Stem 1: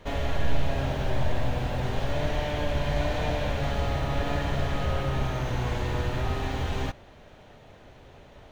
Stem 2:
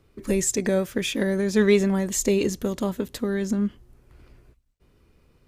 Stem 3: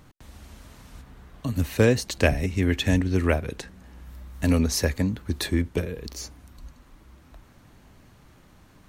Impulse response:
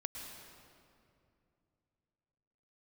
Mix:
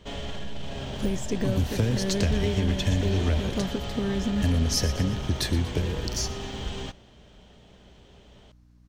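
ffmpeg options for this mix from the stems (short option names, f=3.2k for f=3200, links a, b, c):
-filter_complex "[0:a]equalizer=f=200:t=o:w=0.33:g=11,equalizer=f=400:t=o:w=0.33:g=6,equalizer=f=3.15k:t=o:w=0.33:g=10,equalizer=f=8k:t=o:w=0.33:g=10,equalizer=f=12.5k:t=o:w=0.33:g=-11,alimiter=limit=-18.5dB:level=0:latency=1:release=18,volume=-7dB[a];[1:a]deesser=0.9,adelay=750,volume=-4.5dB[b];[2:a]agate=range=-19dB:threshold=-40dB:ratio=16:detection=peak,acrossover=split=220[c][d];[d]acompressor=threshold=-23dB:ratio=6[e];[c][e]amix=inputs=2:normalize=0,volume=0dB,asplit=2[f][g];[g]volume=-18dB[h];[b][f]amix=inputs=2:normalize=0,lowshelf=f=160:g=11.5,acompressor=threshold=-24dB:ratio=3,volume=0dB[i];[h]aecho=0:1:119|238|357|476|595|714|833|952:1|0.53|0.281|0.149|0.0789|0.0418|0.0222|0.0117[j];[a][i][j]amix=inputs=3:normalize=0,equalizer=f=5.3k:t=o:w=0.81:g=8.5,aeval=exprs='val(0)+0.00178*(sin(2*PI*60*n/s)+sin(2*PI*2*60*n/s)/2+sin(2*PI*3*60*n/s)/3+sin(2*PI*4*60*n/s)/4+sin(2*PI*5*60*n/s)/5)':c=same"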